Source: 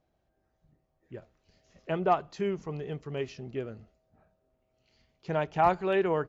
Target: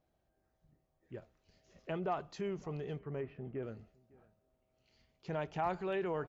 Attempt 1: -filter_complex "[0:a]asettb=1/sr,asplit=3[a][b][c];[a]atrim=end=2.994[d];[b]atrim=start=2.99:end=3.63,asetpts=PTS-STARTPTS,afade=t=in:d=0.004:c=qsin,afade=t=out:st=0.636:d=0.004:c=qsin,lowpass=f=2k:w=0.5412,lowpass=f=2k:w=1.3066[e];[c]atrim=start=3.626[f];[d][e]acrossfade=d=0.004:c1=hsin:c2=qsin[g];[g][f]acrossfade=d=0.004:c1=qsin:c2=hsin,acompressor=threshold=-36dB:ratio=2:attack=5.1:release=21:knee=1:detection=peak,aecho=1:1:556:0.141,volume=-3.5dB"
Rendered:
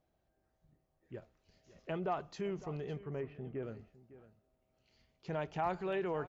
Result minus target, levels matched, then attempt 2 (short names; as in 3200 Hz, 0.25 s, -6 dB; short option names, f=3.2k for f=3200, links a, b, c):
echo-to-direct +8 dB
-filter_complex "[0:a]asettb=1/sr,asplit=3[a][b][c];[a]atrim=end=2.994[d];[b]atrim=start=2.99:end=3.63,asetpts=PTS-STARTPTS,afade=t=in:d=0.004:c=qsin,afade=t=out:st=0.636:d=0.004:c=qsin,lowpass=f=2k:w=0.5412,lowpass=f=2k:w=1.3066[e];[c]atrim=start=3.626[f];[d][e]acrossfade=d=0.004:c1=hsin:c2=qsin[g];[g][f]acrossfade=d=0.004:c1=qsin:c2=hsin,acompressor=threshold=-36dB:ratio=2:attack=5.1:release=21:knee=1:detection=peak,aecho=1:1:556:0.0562,volume=-3.5dB"